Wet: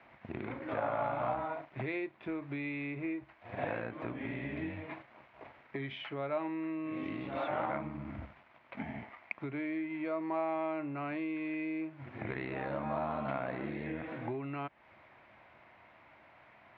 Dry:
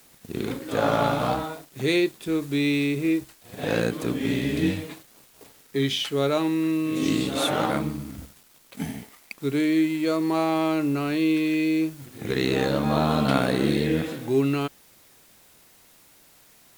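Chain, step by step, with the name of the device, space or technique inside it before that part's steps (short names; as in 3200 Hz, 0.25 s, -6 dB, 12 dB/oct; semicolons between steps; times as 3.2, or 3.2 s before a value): bass amplifier (compressor 5:1, threshold -34 dBFS, peak gain reduction 17 dB; speaker cabinet 76–2300 Hz, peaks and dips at 170 Hz -10 dB, 270 Hz -5 dB, 440 Hz -9 dB, 650 Hz +6 dB, 960 Hz +5 dB, 2200 Hz +5 dB); gain +1 dB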